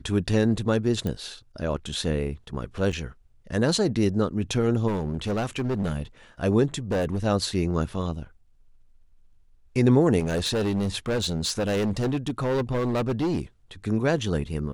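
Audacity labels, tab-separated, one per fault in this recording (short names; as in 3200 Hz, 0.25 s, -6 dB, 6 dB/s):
1.070000	1.070000	pop -17 dBFS
2.920000	2.930000	gap 7.1 ms
4.870000	6.020000	clipped -22.5 dBFS
6.910000	7.250000	clipped -21.5 dBFS
10.190000	13.410000	clipped -21.5 dBFS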